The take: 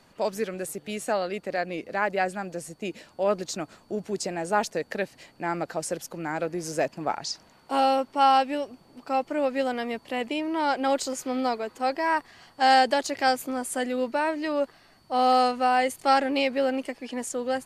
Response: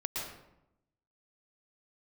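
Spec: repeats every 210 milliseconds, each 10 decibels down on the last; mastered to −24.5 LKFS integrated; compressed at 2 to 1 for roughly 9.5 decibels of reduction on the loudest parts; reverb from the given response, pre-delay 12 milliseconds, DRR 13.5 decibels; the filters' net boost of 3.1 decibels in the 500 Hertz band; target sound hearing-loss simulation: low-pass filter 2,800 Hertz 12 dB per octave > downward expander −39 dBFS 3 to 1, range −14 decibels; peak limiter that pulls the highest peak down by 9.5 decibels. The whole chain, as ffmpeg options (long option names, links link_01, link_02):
-filter_complex "[0:a]equalizer=frequency=500:width_type=o:gain=3.5,acompressor=threshold=-32dB:ratio=2,alimiter=level_in=2dB:limit=-24dB:level=0:latency=1,volume=-2dB,aecho=1:1:210|420|630|840:0.316|0.101|0.0324|0.0104,asplit=2[link_01][link_02];[1:a]atrim=start_sample=2205,adelay=12[link_03];[link_02][link_03]afir=irnorm=-1:irlink=0,volume=-17dB[link_04];[link_01][link_04]amix=inputs=2:normalize=0,lowpass=2800,agate=range=-14dB:threshold=-39dB:ratio=3,volume=11dB"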